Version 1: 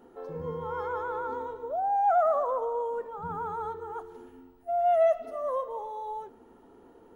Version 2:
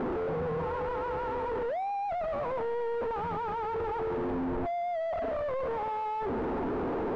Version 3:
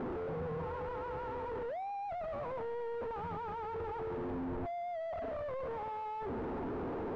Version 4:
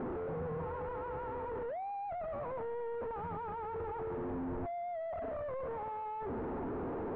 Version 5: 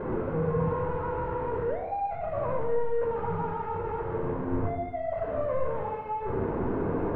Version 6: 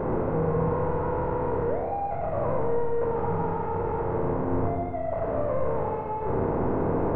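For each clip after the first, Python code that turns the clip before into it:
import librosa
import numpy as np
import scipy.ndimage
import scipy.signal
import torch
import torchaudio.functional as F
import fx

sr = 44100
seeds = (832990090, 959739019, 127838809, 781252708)

y1 = np.sign(x) * np.sqrt(np.mean(np.square(x)))
y1 = scipy.signal.sosfilt(scipy.signal.butter(2, 1100.0, 'lowpass', fs=sr, output='sos'), y1)
y2 = fx.peak_eq(y1, sr, hz=100.0, db=5.0, octaves=1.4)
y2 = y2 * 10.0 ** (-7.5 / 20.0)
y3 = scipy.signal.sosfilt(scipy.signal.butter(2, 2100.0, 'lowpass', fs=sr, output='sos'), y2)
y4 = fx.room_shoebox(y3, sr, seeds[0], volume_m3=2500.0, walls='furnished', distance_m=5.1)
y4 = y4 * 10.0 ** (3.0 / 20.0)
y5 = fx.bin_compress(y4, sr, power=0.6)
y5 = fx.high_shelf(y5, sr, hz=2400.0, db=-9.5)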